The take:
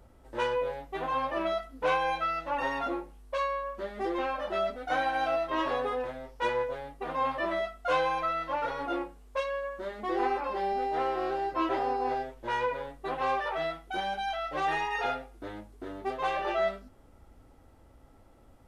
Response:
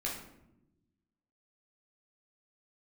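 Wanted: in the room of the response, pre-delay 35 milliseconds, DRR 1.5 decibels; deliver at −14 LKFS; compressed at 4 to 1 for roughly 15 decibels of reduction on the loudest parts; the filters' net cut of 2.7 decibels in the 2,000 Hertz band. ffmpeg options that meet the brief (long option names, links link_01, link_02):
-filter_complex "[0:a]equalizer=frequency=2000:width_type=o:gain=-3.5,acompressor=threshold=-43dB:ratio=4,asplit=2[link_01][link_02];[1:a]atrim=start_sample=2205,adelay=35[link_03];[link_02][link_03]afir=irnorm=-1:irlink=0,volume=-4.5dB[link_04];[link_01][link_04]amix=inputs=2:normalize=0,volume=27.5dB"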